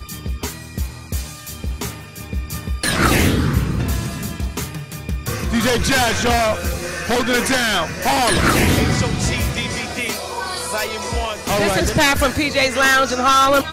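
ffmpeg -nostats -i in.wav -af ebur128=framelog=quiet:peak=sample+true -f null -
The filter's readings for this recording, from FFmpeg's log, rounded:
Integrated loudness:
  I:         -18.4 LUFS
  Threshold: -28.6 LUFS
Loudness range:
  LRA:         3.7 LU
  Threshold: -38.9 LUFS
  LRA low:   -20.7 LUFS
  LRA high:  -16.9 LUFS
Sample peak:
  Peak:       -2.1 dBFS
True peak:
  Peak:       -2.0 dBFS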